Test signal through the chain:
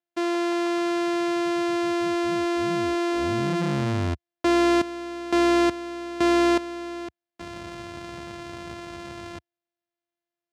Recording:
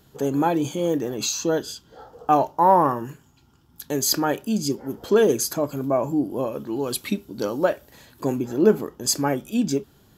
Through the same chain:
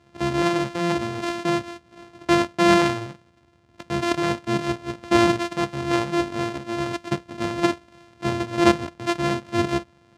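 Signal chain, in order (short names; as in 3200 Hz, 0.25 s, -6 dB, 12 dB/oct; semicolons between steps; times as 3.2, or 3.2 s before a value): sample sorter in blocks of 128 samples; HPF 70 Hz 24 dB/oct; air absorption 81 m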